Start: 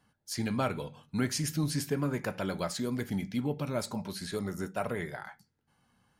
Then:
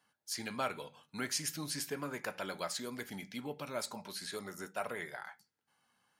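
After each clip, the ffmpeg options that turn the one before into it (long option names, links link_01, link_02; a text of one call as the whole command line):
ffmpeg -i in.wav -af "highpass=frequency=250:poles=1,lowshelf=frequency=490:gain=-9.5,volume=-1dB" out.wav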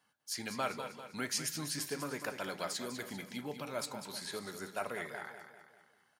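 ffmpeg -i in.wav -af "aecho=1:1:197|394|591|788|985:0.335|0.164|0.0804|0.0394|0.0193" out.wav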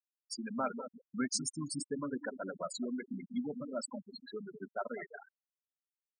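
ffmpeg -i in.wav -af "aresample=22050,aresample=44100,equalizer=frequency=250:width_type=o:width=0.33:gain=8,equalizer=frequency=2500:width_type=o:width=0.33:gain=-4,equalizer=frequency=8000:width_type=o:width=0.33:gain=6,afftfilt=real='re*gte(hypot(re,im),0.0355)':imag='im*gte(hypot(re,im),0.0355)':win_size=1024:overlap=0.75,volume=1dB" out.wav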